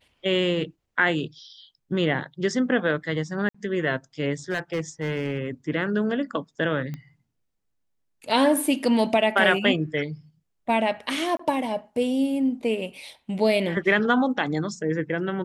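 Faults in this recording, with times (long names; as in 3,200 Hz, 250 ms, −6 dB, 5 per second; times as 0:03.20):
0:03.49–0:03.54: drop-out 55 ms
0:04.50–0:05.47: clipping −20.5 dBFS
0:06.94: click −22 dBFS
0:11.37–0:11.39: drop-out 24 ms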